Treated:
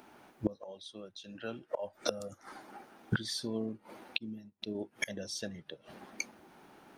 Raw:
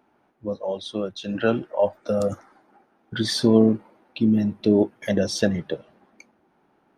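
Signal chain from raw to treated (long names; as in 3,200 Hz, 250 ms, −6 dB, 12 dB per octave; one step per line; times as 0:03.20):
high-shelf EQ 2,700 Hz +12 dB
gate with flip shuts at −23 dBFS, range −26 dB
0:04.18–0:04.75: expander for the loud parts 2.5 to 1, over −55 dBFS
level +5.5 dB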